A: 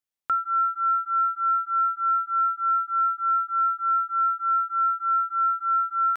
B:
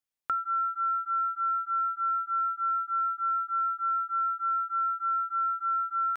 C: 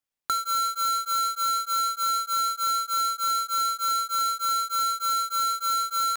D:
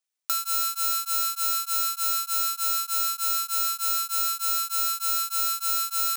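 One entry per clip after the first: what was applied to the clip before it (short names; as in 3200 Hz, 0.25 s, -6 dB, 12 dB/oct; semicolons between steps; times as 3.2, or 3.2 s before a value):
compressor 5:1, threshold -25 dBFS, peak gain reduction 5 dB; gain -1.5 dB
half-waves squared off
careless resampling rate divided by 3×, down none, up hold; RIAA curve recording; gain -7 dB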